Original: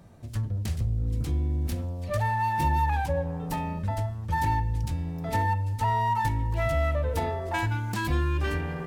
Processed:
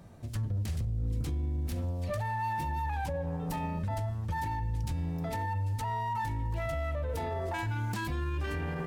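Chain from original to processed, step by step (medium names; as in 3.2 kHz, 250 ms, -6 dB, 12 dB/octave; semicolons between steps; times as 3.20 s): peak limiter -26 dBFS, peak gain reduction 11.5 dB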